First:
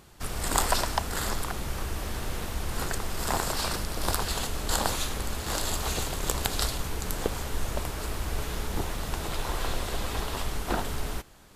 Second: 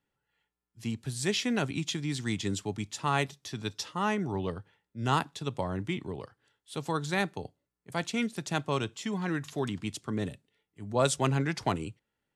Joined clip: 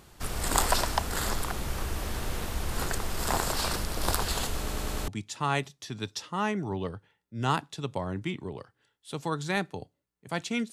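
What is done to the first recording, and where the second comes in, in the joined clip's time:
first
4.58 stutter in place 0.10 s, 5 plays
5.08 switch to second from 2.71 s

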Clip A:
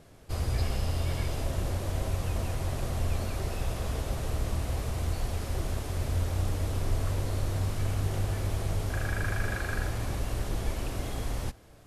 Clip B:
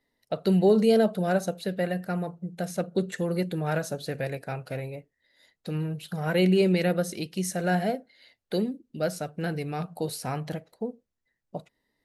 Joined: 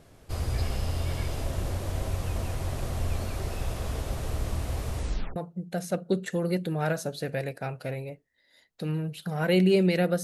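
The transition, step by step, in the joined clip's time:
clip A
4.95 tape stop 0.41 s
5.36 switch to clip B from 2.22 s

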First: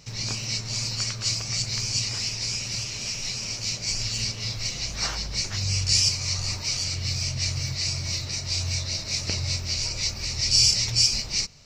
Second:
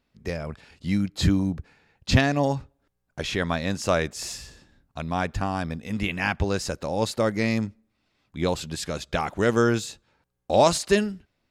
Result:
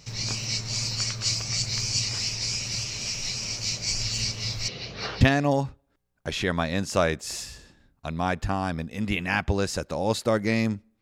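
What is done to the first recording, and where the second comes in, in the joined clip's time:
first
4.68–5.21 speaker cabinet 110–3900 Hz, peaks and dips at 440 Hz +10 dB, 960 Hz -4 dB, 2200 Hz -4 dB
5.21 switch to second from 2.13 s

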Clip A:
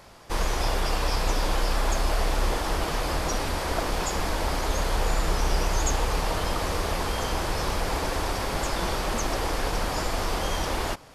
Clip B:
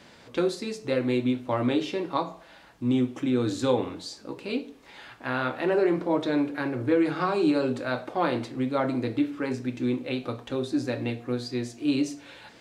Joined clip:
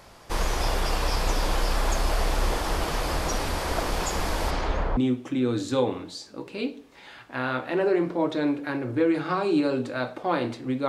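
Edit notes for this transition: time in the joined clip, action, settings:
clip A
4.5–4.97 LPF 6500 Hz -> 1100 Hz
4.97 switch to clip B from 2.88 s

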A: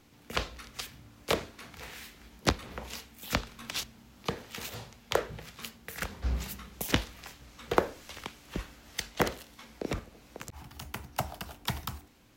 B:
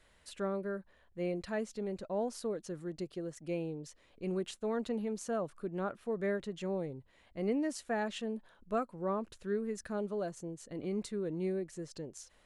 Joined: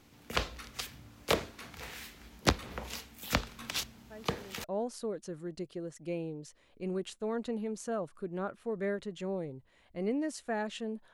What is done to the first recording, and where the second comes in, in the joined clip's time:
A
4.1 add B from 1.51 s 0.54 s -13.5 dB
4.64 switch to B from 2.05 s

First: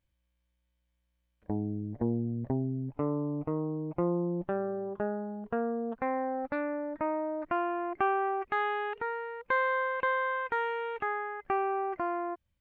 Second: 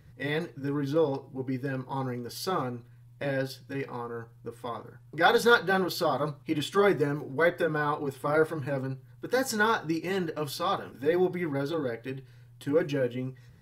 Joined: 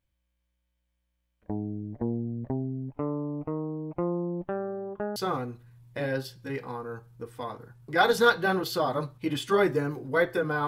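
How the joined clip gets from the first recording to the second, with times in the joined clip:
first
5.16 switch to second from 2.41 s

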